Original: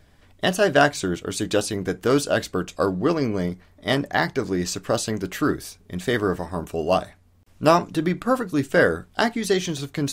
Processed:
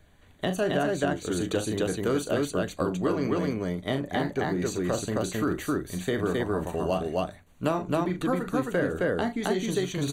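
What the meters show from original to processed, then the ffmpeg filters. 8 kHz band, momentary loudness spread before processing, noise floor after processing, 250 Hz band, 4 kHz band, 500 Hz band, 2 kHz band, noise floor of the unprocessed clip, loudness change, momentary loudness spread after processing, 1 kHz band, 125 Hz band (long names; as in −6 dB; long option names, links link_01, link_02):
−6.5 dB, 9 LU, −55 dBFS, −3.5 dB, −8.0 dB, −5.0 dB, −8.5 dB, −55 dBFS, −5.0 dB, 4 LU, −7.0 dB, −3.0 dB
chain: -filter_complex "[0:a]asuperstop=centerf=5200:order=8:qfactor=4.7,aecho=1:1:37.9|265.3:0.355|0.891,acrossover=split=460|920[link_01][link_02][link_03];[link_01]acompressor=threshold=-22dB:ratio=4[link_04];[link_02]acompressor=threshold=-29dB:ratio=4[link_05];[link_03]acompressor=threshold=-32dB:ratio=4[link_06];[link_04][link_05][link_06]amix=inputs=3:normalize=0,volume=-3.5dB"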